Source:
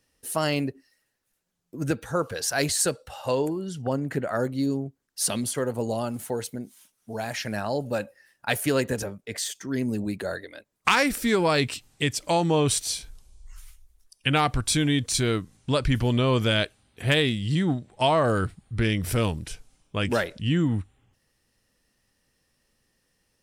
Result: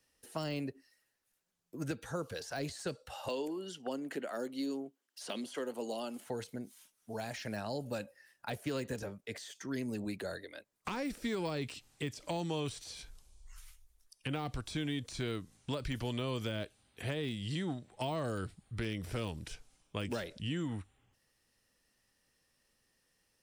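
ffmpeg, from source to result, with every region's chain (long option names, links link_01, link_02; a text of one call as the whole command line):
ffmpeg -i in.wav -filter_complex "[0:a]asettb=1/sr,asplit=3[link_01][link_02][link_03];[link_01]atrim=end=3.284[link_04];[link_02]atrim=start=3.28:end=6.26,asetpts=PTS-STARTPTS,afade=type=in:duration=0.004:curve=qsin,afade=type=out:start_time=2.976:duration=0.004:curve=qsin,highpass=frequency=240:width=0.5412,highpass=frequency=240:width=1.3066,equalizer=frequency=3000:width_type=o:width=0.3:gain=6.5[link_05];[link_03]atrim=start=6.256[link_06];[link_04][link_05]acrossfade=duration=0.004:curve1=hsin:curve2=qsin[link_07];[link_07][link_06]acrossfade=duration=0.004:curve1=qsin:curve2=hsin,deesser=0.85,lowshelf=frequency=370:gain=-5.5,acrossover=split=330|770|2800|7400[link_08][link_09][link_10][link_11][link_12];[link_08]acompressor=threshold=-34dB:ratio=4[link_13];[link_09]acompressor=threshold=-39dB:ratio=4[link_14];[link_10]acompressor=threshold=-45dB:ratio=4[link_15];[link_11]acompressor=threshold=-42dB:ratio=4[link_16];[link_12]acompressor=threshold=-57dB:ratio=4[link_17];[link_13][link_14][link_15][link_16][link_17]amix=inputs=5:normalize=0,volume=-3.5dB" out.wav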